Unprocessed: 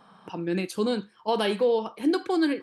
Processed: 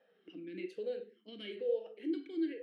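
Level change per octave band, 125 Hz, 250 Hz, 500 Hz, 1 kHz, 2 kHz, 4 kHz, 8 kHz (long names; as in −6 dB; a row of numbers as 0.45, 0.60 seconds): below −20 dB, −12.5 dB, −12.0 dB, below −30 dB, −18.0 dB, −17.0 dB, below −30 dB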